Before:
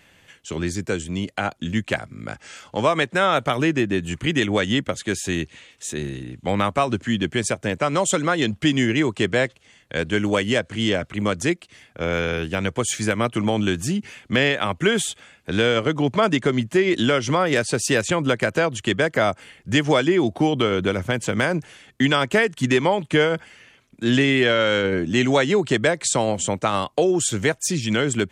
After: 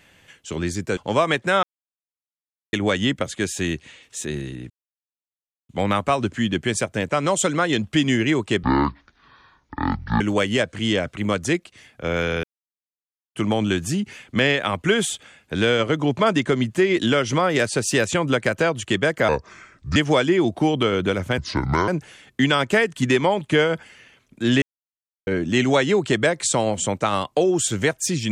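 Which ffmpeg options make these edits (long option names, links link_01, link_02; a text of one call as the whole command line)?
ffmpeg -i in.wav -filter_complex "[0:a]asplit=15[link_01][link_02][link_03][link_04][link_05][link_06][link_07][link_08][link_09][link_10][link_11][link_12][link_13][link_14][link_15];[link_01]atrim=end=0.972[link_16];[link_02]atrim=start=2.648:end=3.31,asetpts=PTS-STARTPTS,afade=type=out:start_time=0.658:duration=0.004:curve=hsin[link_17];[link_03]atrim=start=3.31:end=4.41,asetpts=PTS-STARTPTS,volume=0[link_18];[link_04]atrim=start=4.41:end=6.38,asetpts=PTS-STARTPTS,afade=type=in:duration=0.004:curve=hsin,afade=type=out:start_time=1.966:duration=0.004:curve=hsin,apad=pad_dur=0.99[link_19];[link_05]atrim=start=6.38:end=9.324,asetpts=PTS-STARTPTS,afade=type=in:duration=0.004:curve=hsin[link_20];[link_06]atrim=start=9.32:end=10.17,asetpts=PTS-STARTPTS,asetrate=23814,aresample=44100[link_21];[link_07]atrim=start=10.166:end=12.4,asetpts=PTS-STARTPTS,afade=type=out:start_time=2.23:duration=0.004:curve=hsin[link_22];[link_08]atrim=start=12.4:end=13.32,asetpts=PTS-STARTPTS,volume=0[link_23];[link_09]atrim=start=13.32:end=19.254,asetpts=PTS-STARTPTS,afade=type=in:duration=0.004:curve=hsin[link_24];[link_10]atrim=start=19.25:end=19.75,asetpts=PTS-STARTPTS,asetrate=32634,aresample=44100,atrim=end_sample=29797,asetpts=PTS-STARTPTS[link_25];[link_11]atrim=start=19.746:end=21.174[link_26];[link_12]atrim=start=21.17:end=21.49,asetpts=PTS-STARTPTS,asetrate=28224,aresample=44100[link_27];[link_13]atrim=start=21.486:end=24.23,asetpts=PTS-STARTPTS,afade=type=out:start_time=2.74:duration=0.004:curve=hsin[link_28];[link_14]atrim=start=24.23:end=24.88,asetpts=PTS-STARTPTS,volume=0[link_29];[link_15]atrim=start=24.88,asetpts=PTS-STARTPTS,afade=type=in:duration=0.004:curve=hsin[link_30];[link_17][link_18][link_19][link_20]concat=n=4:v=0:a=1[link_31];[link_16][link_31]acrossfade=duration=0.004:curve1=hsin:curve2=hsin[link_32];[link_32][link_21]acrossfade=duration=0.004:curve1=hsin:curve2=hsin[link_33];[link_22][link_23][link_24]concat=n=3:v=0:a=1[link_34];[link_33][link_34]acrossfade=duration=0.004:curve1=hsin:curve2=hsin[link_35];[link_35][link_25]acrossfade=duration=0.004:curve1=hsin:curve2=hsin[link_36];[link_36][link_26]acrossfade=duration=0.004:curve1=hsin:curve2=hsin[link_37];[link_37][link_27]acrossfade=duration=0.004:curve1=hsin:curve2=hsin[link_38];[link_28][link_29][link_30]concat=n=3:v=0:a=1[link_39];[link_38][link_39]acrossfade=duration=0.004:curve1=hsin:curve2=hsin" out.wav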